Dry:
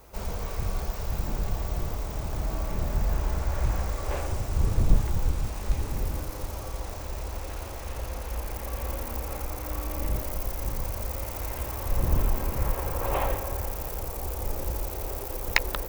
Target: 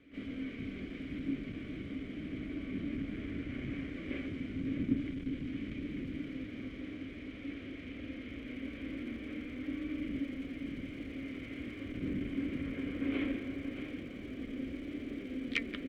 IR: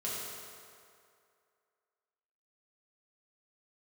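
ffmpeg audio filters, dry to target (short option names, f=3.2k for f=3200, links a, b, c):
-filter_complex "[0:a]asplit=4[a][b][c][d];[b]asetrate=22050,aresample=44100,atempo=2,volume=-8dB[e];[c]asetrate=58866,aresample=44100,atempo=0.749154,volume=-7dB[f];[d]asetrate=88200,aresample=44100,atempo=0.5,volume=-16dB[g];[a][e][f][g]amix=inputs=4:normalize=0,flanger=delay=3.4:depth=7.3:regen=78:speed=0.2:shape=sinusoidal,acrossover=split=3000[h][i];[h]aeval=exprs='0.447*sin(PI/2*3.98*val(0)/0.447)':c=same[j];[j][i]amix=inputs=2:normalize=0,asplit=3[k][l][m];[k]bandpass=f=270:t=q:w=8,volume=0dB[n];[l]bandpass=f=2.29k:t=q:w=8,volume=-6dB[o];[m]bandpass=f=3.01k:t=q:w=8,volume=-9dB[p];[n][o][p]amix=inputs=3:normalize=0,aecho=1:1:630:0.335,volume=-2dB"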